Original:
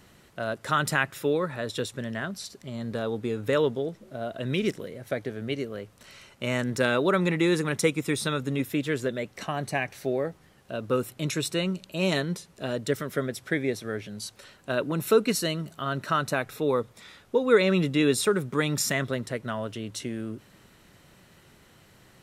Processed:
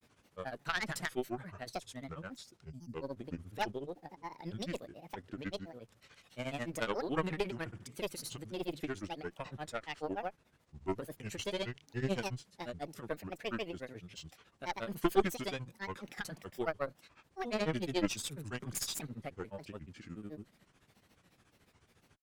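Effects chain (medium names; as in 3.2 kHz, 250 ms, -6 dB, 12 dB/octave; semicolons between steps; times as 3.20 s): granulator, grains 14 per s, pitch spread up and down by 7 st; Chebyshev shaper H 4 -12 dB, 7 -31 dB, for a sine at -8.5 dBFS; time-frequency box 2.70–2.93 s, 320–4500 Hz -18 dB; trim -7 dB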